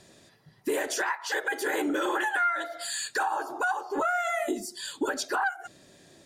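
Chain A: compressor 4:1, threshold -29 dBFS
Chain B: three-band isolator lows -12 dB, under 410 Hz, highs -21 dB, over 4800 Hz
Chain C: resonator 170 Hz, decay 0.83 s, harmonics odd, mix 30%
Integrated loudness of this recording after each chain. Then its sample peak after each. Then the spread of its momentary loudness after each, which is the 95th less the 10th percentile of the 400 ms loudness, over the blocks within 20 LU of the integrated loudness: -32.5, -30.0, -32.0 LUFS; -20.5, -18.0, -21.0 dBFS; 5, 10, 6 LU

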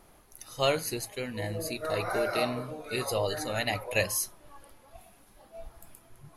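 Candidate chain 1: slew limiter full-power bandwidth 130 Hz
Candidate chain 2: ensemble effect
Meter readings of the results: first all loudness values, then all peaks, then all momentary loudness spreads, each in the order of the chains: -31.5, -34.0 LUFS; -14.0, -13.5 dBFS; 20, 20 LU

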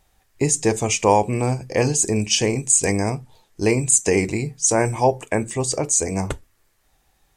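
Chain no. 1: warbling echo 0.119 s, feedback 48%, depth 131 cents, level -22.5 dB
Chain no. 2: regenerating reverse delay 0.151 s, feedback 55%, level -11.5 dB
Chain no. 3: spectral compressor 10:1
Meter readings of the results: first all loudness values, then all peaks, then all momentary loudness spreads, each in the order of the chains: -20.0, -19.5, -26.0 LUFS; -1.0, -1.5, -1.0 dBFS; 9, 9, 6 LU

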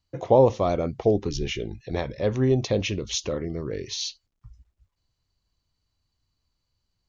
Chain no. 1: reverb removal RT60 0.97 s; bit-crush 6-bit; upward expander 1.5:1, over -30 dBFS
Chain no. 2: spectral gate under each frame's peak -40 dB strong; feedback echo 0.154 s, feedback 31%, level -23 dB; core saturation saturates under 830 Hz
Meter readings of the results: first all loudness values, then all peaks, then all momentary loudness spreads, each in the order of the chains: -27.5, -27.5 LUFS; -7.0, -6.0 dBFS; 19, 12 LU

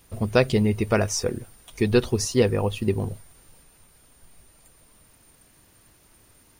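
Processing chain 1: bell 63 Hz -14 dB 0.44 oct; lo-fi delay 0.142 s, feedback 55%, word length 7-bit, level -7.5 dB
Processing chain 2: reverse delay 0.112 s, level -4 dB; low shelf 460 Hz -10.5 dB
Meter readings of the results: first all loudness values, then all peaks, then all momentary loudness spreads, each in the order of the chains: -23.0, -27.5 LUFS; -4.0, -7.5 dBFS; 11, 10 LU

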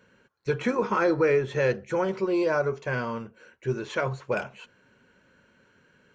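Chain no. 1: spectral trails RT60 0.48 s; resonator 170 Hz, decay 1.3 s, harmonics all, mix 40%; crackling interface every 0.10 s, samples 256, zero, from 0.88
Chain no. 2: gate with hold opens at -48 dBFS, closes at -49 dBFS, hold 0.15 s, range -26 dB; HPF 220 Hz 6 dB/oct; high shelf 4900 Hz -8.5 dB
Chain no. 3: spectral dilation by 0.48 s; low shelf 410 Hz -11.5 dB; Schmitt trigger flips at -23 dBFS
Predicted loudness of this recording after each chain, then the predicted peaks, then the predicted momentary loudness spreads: -30.0, -28.0, -24.5 LUFS; -16.0, -13.5, -17.5 dBFS; 14, 13, 6 LU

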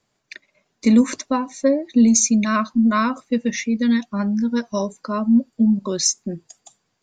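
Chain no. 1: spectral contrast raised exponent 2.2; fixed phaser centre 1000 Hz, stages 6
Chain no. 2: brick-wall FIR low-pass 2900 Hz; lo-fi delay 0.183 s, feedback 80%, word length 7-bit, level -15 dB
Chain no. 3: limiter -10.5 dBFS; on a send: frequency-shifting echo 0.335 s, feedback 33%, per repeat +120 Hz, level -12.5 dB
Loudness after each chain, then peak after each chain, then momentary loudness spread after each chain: -28.0, -19.5, -20.5 LUFS; -9.5, -5.0, -8.5 dBFS; 13, 13, 9 LU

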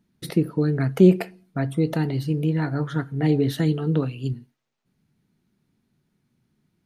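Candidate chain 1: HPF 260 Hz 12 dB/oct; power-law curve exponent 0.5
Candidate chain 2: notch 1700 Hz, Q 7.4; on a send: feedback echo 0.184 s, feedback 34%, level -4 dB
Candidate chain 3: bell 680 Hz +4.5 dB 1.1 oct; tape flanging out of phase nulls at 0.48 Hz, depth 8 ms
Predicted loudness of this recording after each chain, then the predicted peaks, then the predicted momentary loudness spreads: -19.5, -21.5, -27.0 LUFS; -7.0, -2.5, -9.5 dBFS; 8, 10, 12 LU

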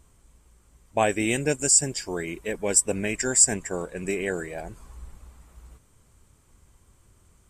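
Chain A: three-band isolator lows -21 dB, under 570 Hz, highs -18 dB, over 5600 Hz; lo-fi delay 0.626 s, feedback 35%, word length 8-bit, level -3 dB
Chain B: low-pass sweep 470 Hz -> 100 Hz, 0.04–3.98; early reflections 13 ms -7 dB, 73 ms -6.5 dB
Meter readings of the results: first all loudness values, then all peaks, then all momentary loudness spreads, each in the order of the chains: -30.0, -29.0 LUFS; -12.0, -11.0 dBFS; 12, 22 LU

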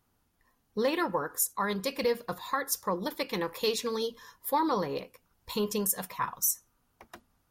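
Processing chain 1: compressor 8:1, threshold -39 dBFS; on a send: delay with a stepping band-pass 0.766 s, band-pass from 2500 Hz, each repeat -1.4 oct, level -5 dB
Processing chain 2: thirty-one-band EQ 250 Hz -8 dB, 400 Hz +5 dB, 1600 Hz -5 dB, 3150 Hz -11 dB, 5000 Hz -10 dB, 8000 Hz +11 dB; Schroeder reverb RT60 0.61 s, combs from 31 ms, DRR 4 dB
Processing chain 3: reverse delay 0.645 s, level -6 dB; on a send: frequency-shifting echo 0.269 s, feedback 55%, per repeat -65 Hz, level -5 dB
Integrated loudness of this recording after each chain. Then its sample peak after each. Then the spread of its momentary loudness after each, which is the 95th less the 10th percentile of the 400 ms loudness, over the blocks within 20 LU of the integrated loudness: -43.0, -28.5, -29.0 LUFS; -26.5, -10.0, -12.5 dBFS; 10, 11, 6 LU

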